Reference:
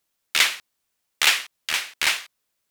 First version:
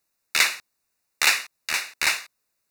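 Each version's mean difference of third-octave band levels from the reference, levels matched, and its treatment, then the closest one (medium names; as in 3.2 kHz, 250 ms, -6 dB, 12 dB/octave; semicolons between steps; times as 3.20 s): 1.0 dB: Butterworth band-stop 3.2 kHz, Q 4.2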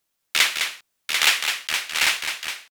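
4.5 dB: multi-tap echo 208/742 ms -6.5/-5.5 dB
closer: first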